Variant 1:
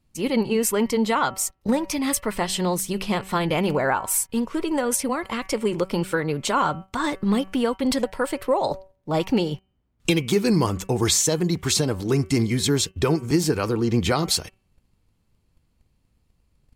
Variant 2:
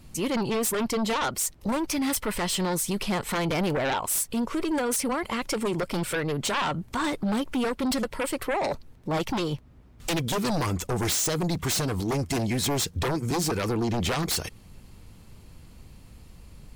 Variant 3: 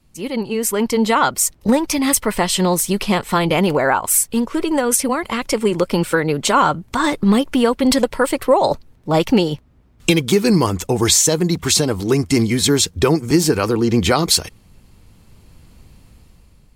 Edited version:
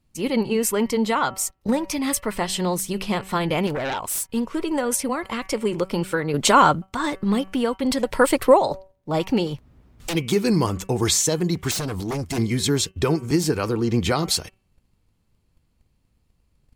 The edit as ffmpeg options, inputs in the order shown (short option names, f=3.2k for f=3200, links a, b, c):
-filter_complex "[1:a]asplit=3[a][b][c];[2:a]asplit=2[d][e];[0:a]asplit=6[f][g][h][i][j][k];[f]atrim=end=3.672[l];[a]atrim=start=3.668:end=4.232[m];[g]atrim=start=4.228:end=6.342[n];[d]atrim=start=6.338:end=6.822[o];[h]atrim=start=6.818:end=8.13[p];[e]atrim=start=8.03:end=8.65[q];[i]atrim=start=8.55:end=9.472[r];[b]atrim=start=9.468:end=10.152[s];[j]atrim=start=10.148:end=11.712[t];[c]atrim=start=11.708:end=12.382[u];[k]atrim=start=12.378[v];[l][m]acrossfade=d=0.004:c1=hsin:c2=hsin[w];[w][n]acrossfade=d=0.004:c1=hsin:c2=hsin[x];[x][o]acrossfade=d=0.004:c1=hsin:c2=hsin[y];[y][p]acrossfade=d=0.004:c1=hsin:c2=hsin[z];[z][q]acrossfade=d=0.1:c1=tri:c2=tri[aa];[aa][r]acrossfade=d=0.1:c1=tri:c2=tri[ab];[ab][s]acrossfade=d=0.004:c1=hsin:c2=hsin[ac];[ac][t]acrossfade=d=0.004:c1=hsin:c2=hsin[ad];[ad][u]acrossfade=d=0.004:c1=hsin:c2=hsin[ae];[ae][v]acrossfade=d=0.004:c1=hsin:c2=hsin"